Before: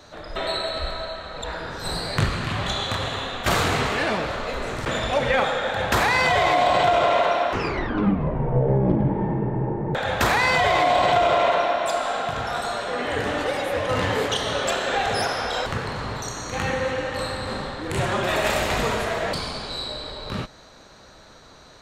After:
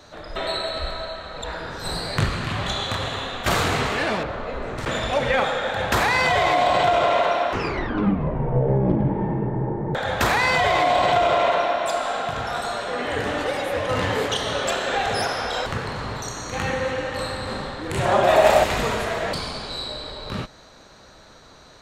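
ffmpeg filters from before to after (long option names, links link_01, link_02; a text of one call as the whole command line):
ffmpeg -i in.wav -filter_complex "[0:a]asettb=1/sr,asplit=3[link_01][link_02][link_03];[link_01]atrim=end=4.234[link_04];[link_02]atrim=start=4.23:end=4.78,asetpts=PTS-STARTPTS,afade=type=in:duration=0.004:curve=qsin,afade=type=out:start_time=0.546:duration=0.004:curve=qsin,lowpass=frequency=1400:poles=1[link_05];[link_03]atrim=start=4.776[link_06];[link_04][link_05]acrossfade=duration=0.004:curve1=hsin:curve2=qsin[link_07];[link_07][link_06]acrossfade=duration=0.004:curve1=qsin:curve2=hsin,asettb=1/sr,asplit=3[link_08][link_09][link_10];[link_08]atrim=end=9.474[link_11];[link_09]atrim=start=9.47:end=10.18,asetpts=PTS-STARTPTS,afade=type=in:duration=0.004:curve=qsin,afade=type=out:start_time=0.706:duration=0.004:curve=qsin,equalizer=frequency=2600:width=6.7:gain=-7[link_12];[link_10]atrim=start=10.176[link_13];[link_11][link_12]acrossfade=duration=0.004:curve1=hsin:curve2=qsin[link_14];[link_14][link_13]acrossfade=duration=0.004:curve1=qsin:curve2=hsin,asettb=1/sr,asplit=3[link_15][link_16][link_17];[link_15]atrim=end=18.054[link_18];[link_16]atrim=start=18.05:end=18.64,asetpts=PTS-STARTPTS,afade=type=in:duration=0.004:curve=qsin,afade=type=out:start_time=0.586:duration=0.004:curve=qsin,equalizer=frequency=690:width_type=o:width=0.96:gain=12[link_19];[link_17]atrim=start=18.636[link_20];[link_18][link_19]acrossfade=duration=0.004:curve1=hsin:curve2=qsin[link_21];[link_21][link_20]acrossfade=duration=0.004:curve1=qsin:curve2=hsin" out.wav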